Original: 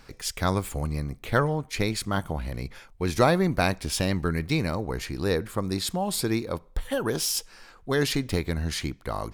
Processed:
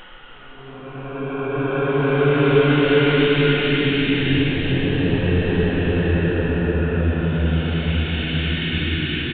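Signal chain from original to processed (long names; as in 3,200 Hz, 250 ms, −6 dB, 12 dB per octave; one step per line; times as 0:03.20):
hearing-aid frequency compression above 1,100 Hz 1.5 to 1
downsampling to 8,000 Hz
extreme stretch with random phases 7.8×, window 0.50 s, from 0:07.63
level +8.5 dB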